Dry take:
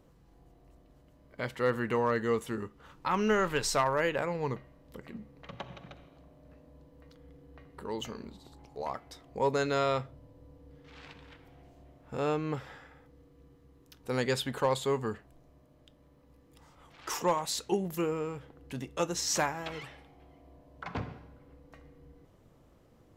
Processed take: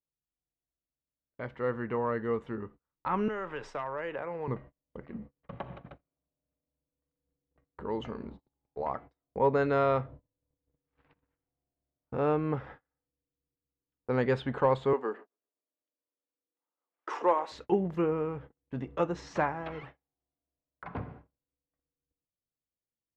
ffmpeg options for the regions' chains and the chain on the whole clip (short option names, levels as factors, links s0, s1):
-filter_complex "[0:a]asettb=1/sr,asplit=3[s0][s1][s2];[s0]atrim=end=3.284[s3];[s1]atrim=start=3.28:end=4.48,asetpts=PTS-STARTPTS,afade=t=in:d=0.004:c=qsin,afade=t=out:st=1.196:d=0.004:c=qsin,bass=f=250:g=-12,treble=f=4000:g=-2,bandreject=f=4200:w=6,acrossover=split=160|3000[s4][s5][s6];[s5]acompressor=threshold=0.0178:ratio=3:attack=3.2:release=140:knee=2.83:detection=peak[s7];[s4][s7][s6]amix=inputs=3:normalize=0[s8];[s2]atrim=start=4.476[s9];[s3][s8]acrossfade=d=0.004:c1=hsin:c2=qsin[s10];[s10][s9]acrossfade=d=0.004:c1=qsin:c2=hsin,asettb=1/sr,asplit=3[s11][s12][s13];[s11]atrim=end=14.934[s14];[s12]atrim=start=14.93:end=17.52,asetpts=PTS-STARTPTS,afade=t=in:d=0.004:c=qsin,afade=t=out:st=2.586:d=0.004:c=qsin,highpass=f=300:w=0.5412,highpass=f=300:w=1.3066,aecho=1:1:130|260|390|520:0.0708|0.0411|0.0238|0.0138,atrim=end_sample=114219[s15];[s13]atrim=start=17.516[s16];[s14][s15]acrossfade=d=0.004:c1=hsin:c2=qsin[s17];[s17][s16]acrossfade=d=0.004:c1=qsin:c2=hsin,lowpass=1700,agate=range=0.0141:threshold=0.00398:ratio=16:detection=peak,dynaudnorm=f=540:g=13:m=2,volume=0.708"